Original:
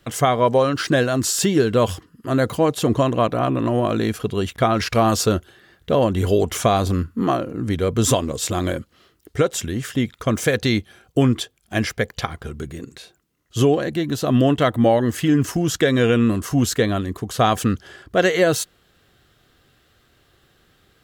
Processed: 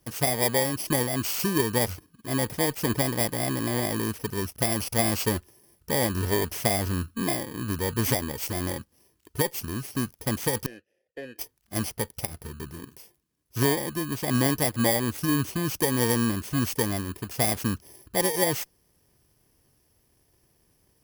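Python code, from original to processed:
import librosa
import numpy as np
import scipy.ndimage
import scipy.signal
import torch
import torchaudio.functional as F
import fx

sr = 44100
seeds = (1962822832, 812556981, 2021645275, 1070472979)

y = fx.bit_reversed(x, sr, seeds[0], block=32)
y = fx.vowel_filter(y, sr, vowel='e', at=(10.66, 11.39))
y = fx.cheby_harmonics(y, sr, harmonics=(3, 5, 8), levels_db=(-13, -23, -37), full_scale_db=-5.0)
y = y * librosa.db_to_amplitude(-3.5)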